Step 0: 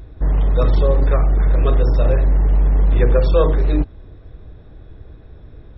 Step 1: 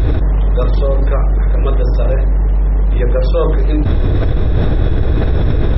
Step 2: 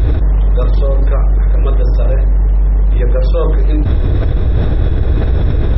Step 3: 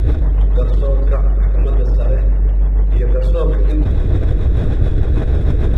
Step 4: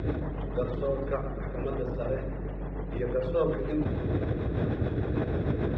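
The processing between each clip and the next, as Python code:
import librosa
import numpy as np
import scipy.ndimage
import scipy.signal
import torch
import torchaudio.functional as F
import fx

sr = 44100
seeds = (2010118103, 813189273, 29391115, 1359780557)

y1 = fx.env_flatten(x, sr, amount_pct=100)
y1 = y1 * 10.0 ** (-1.0 / 20.0)
y2 = fx.peak_eq(y1, sr, hz=60.0, db=4.5, octaves=1.5)
y2 = y2 * 10.0 ** (-2.0 / 20.0)
y3 = scipy.signal.medfilt(y2, 9)
y3 = fx.rotary(y3, sr, hz=6.7)
y3 = fx.echo_feedback(y3, sr, ms=121, feedback_pct=57, wet_db=-11.5)
y3 = y3 * 10.0 ** (-1.0 / 20.0)
y4 = fx.bandpass_edges(y3, sr, low_hz=150.0, high_hz=2900.0)
y4 = y4 * 10.0 ** (-5.0 / 20.0)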